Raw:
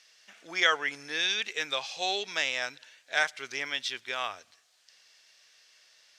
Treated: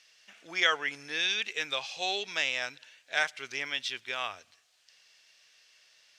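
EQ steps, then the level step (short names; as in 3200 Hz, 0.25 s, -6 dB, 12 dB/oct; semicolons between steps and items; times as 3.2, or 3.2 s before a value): low shelf 100 Hz +9 dB; bell 2700 Hz +4 dB 0.54 oct; -2.5 dB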